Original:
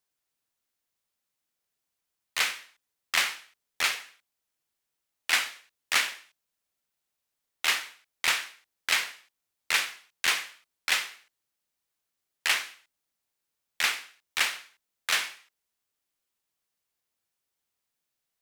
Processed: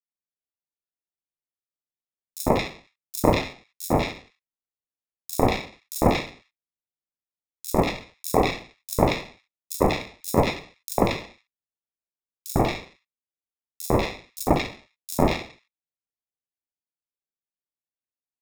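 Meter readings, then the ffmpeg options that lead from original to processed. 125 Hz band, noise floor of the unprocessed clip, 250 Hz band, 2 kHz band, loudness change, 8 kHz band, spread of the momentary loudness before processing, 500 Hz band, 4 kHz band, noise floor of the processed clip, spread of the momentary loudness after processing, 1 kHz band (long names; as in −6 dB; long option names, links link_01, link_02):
can't be measured, −84 dBFS, +30.5 dB, −6.0 dB, +2.5 dB, −2.5 dB, 13 LU, +24.0 dB, −6.0 dB, below −85 dBFS, 14 LU, +10.5 dB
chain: -filter_complex "[0:a]acrusher=samples=29:mix=1:aa=0.000001,agate=range=-33dB:threshold=-51dB:ratio=3:detection=peak,acrossover=split=1600|5300[link_01][link_02][link_03];[link_01]adelay=100[link_04];[link_02]adelay=190[link_05];[link_04][link_05][link_03]amix=inputs=3:normalize=0,volume=6.5dB"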